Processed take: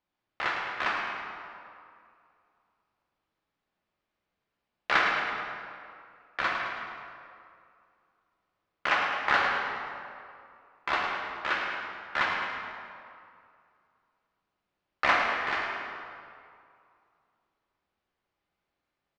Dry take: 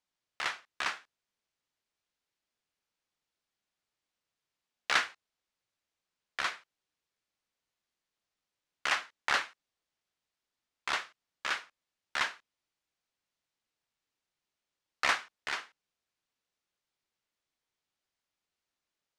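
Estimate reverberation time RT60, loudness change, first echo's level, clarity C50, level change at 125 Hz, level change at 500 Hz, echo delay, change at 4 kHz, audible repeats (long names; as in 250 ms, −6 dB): 2.4 s, +4.0 dB, −8.0 dB, 0.0 dB, can't be measured, +10.5 dB, 106 ms, +1.0 dB, 2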